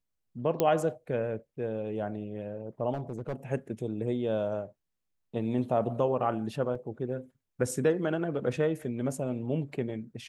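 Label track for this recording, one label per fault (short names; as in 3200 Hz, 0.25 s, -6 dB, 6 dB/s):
0.600000	0.600000	pop -12 dBFS
2.930000	3.340000	clipped -29 dBFS
6.750000	6.750000	gap 4 ms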